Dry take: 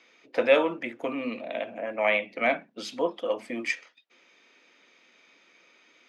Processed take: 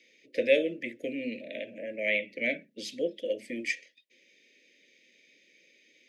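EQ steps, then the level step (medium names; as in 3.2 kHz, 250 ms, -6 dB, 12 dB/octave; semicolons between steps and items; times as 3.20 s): elliptic band-stop 600–1900 Hz, stop band 70 dB; Butterworth band-stop 840 Hz, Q 1.6; treble shelf 6.8 kHz +4 dB; -2.0 dB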